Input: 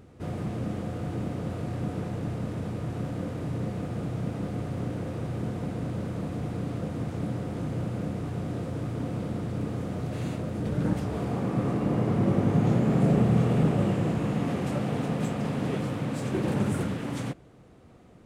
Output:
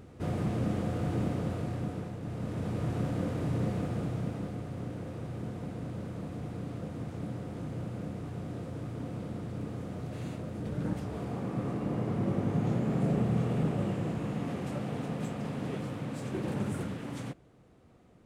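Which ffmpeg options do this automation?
-af "volume=2.99,afade=t=out:st=1.24:d=0.95:silence=0.354813,afade=t=in:st=2.19:d=0.64:silence=0.375837,afade=t=out:st=3.72:d=0.89:silence=0.446684"

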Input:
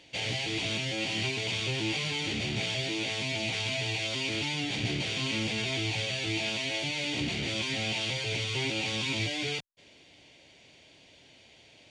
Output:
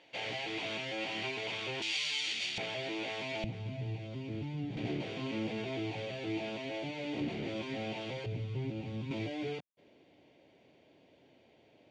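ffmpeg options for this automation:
-af "asetnsamples=n=441:p=0,asendcmd='1.82 bandpass f 4200;2.58 bandpass f 790;3.44 bandpass f 140;4.77 bandpass f 420;8.26 bandpass f 140;9.11 bandpass f 370',bandpass=f=910:t=q:w=0.67:csg=0"

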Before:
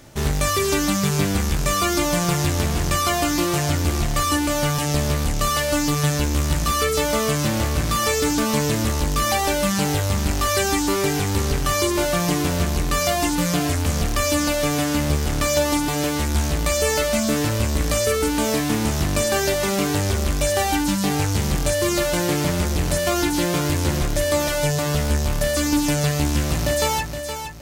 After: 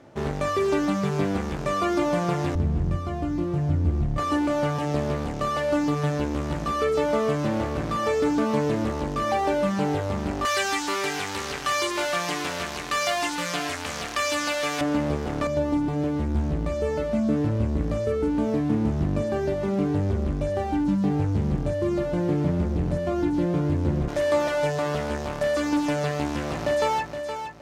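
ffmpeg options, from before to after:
-af "asetnsamples=n=441:p=0,asendcmd='2.55 bandpass f 110;4.18 bandpass f 460;10.45 bandpass f 1800;14.81 bandpass f 480;15.47 bandpass f 190;24.08 bandpass f 720',bandpass=f=500:t=q:w=0.55:csg=0"

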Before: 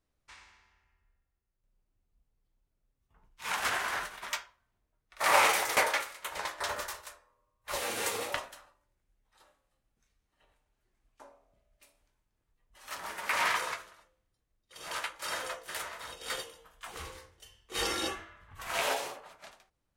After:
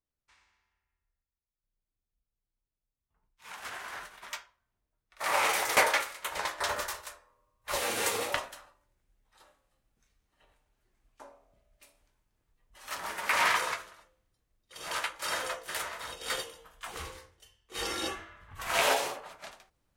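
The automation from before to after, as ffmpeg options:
-af "volume=5.62,afade=t=in:st=3.56:d=0.8:silence=0.421697,afade=t=in:st=5.39:d=0.4:silence=0.421697,afade=t=out:st=16.93:d=0.65:silence=0.316228,afade=t=in:st=17.58:d=1.24:silence=0.251189"

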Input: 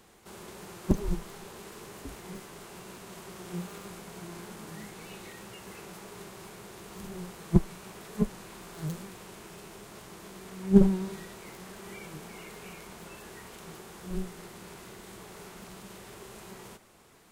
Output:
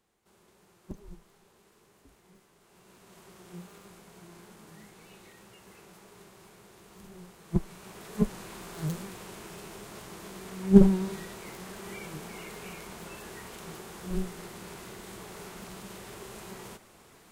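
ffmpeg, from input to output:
-af "volume=1.33,afade=t=in:st=2.6:d=0.64:silence=0.354813,afade=t=in:st=7.43:d=0.95:silence=0.298538"

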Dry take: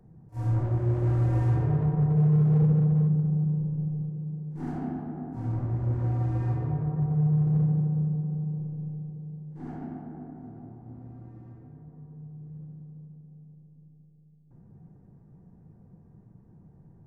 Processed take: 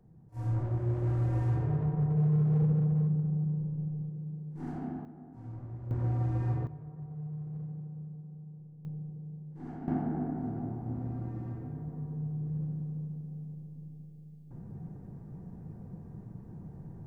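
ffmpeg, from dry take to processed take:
-af "asetnsamples=n=441:p=0,asendcmd='5.05 volume volume -13dB;5.91 volume volume -3dB;6.67 volume volume -16dB;8.85 volume volume -4dB;9.88 volume volume 8dB',volume=0.562"

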